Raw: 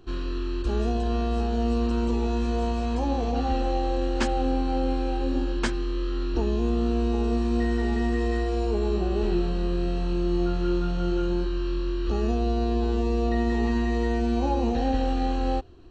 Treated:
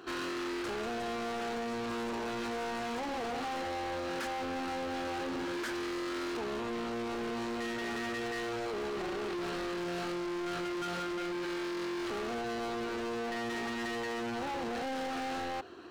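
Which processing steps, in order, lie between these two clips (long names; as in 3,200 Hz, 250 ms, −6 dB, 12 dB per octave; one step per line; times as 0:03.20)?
high-pass filter 300 Hz 12 dB per octave
parametric band 1,500 Hz +9 dB 0.98 octaves
brickwall limiter −26.5 dBFS, peak gain reduction 16 dB
leveller curve on the samples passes 1
hard clipping −37 dBFS, distortion −9 dB
level +2 dB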